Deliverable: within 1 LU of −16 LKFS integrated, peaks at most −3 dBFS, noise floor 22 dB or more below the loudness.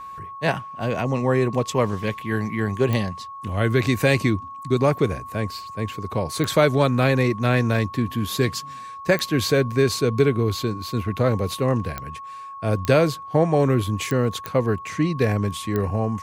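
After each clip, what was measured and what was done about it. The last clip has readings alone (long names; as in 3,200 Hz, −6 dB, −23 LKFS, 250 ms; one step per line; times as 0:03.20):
number of clicks 8; interfering tone 1,100 Hz; level of the tone −34 dBFS; integrated loudness −22.5 LKFS; sample peak −5.0 dBFS; target loudness −16.0 LKFS
→ click removal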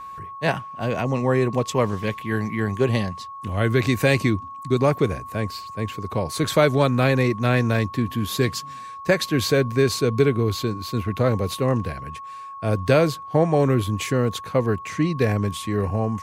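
number of clicks 0; interfering tone 1,100 Hz; level of the tone −34 dBFS
→ notch filter 1,100 Hz, Q 30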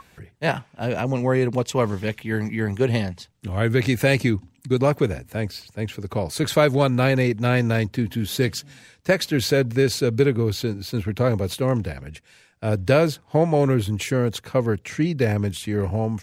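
interfering tone none found; integrated loudness −22.5 LKFS; sample peak −4.5 dBFS; target loudness −16.0 LKFS
→ level +6.5 dB
brickwall limiter −3 dBFS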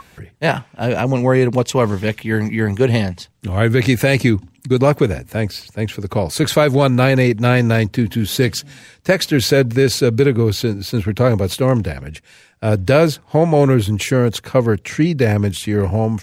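integrated loudness −16.5 LKFS; sample peak −3.0 dBFS; background noise floor −51 dBFS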